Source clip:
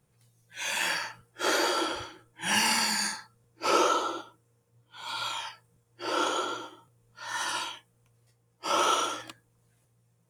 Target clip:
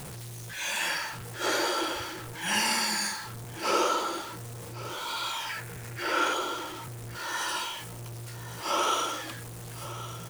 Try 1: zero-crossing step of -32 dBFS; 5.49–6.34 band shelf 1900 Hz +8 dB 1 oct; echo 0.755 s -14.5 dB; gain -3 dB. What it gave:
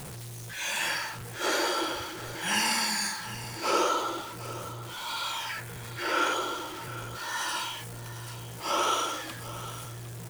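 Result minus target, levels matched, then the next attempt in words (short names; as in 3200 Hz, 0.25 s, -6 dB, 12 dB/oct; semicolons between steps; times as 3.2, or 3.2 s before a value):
echo 0.358 s early
zero-crossing step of -32 dBFS; 5.49–6.34 band shelf 1900 Hz +8 dB 1 oct; echo 1.113 s -14.5 dB; gain -3 dB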